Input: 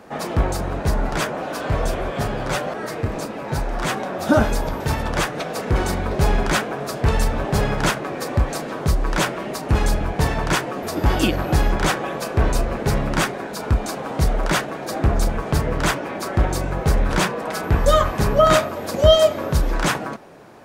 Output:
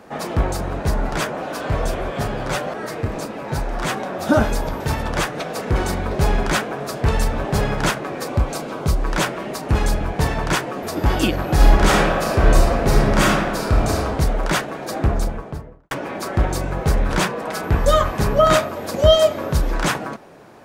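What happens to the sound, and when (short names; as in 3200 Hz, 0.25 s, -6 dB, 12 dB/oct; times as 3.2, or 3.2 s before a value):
8.26–8.99 notch 1800 Hz, Q 7
11.54–14.02 reverb throw, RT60 1.2 s, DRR -3.5 dB
14.96–15.91 studio fade out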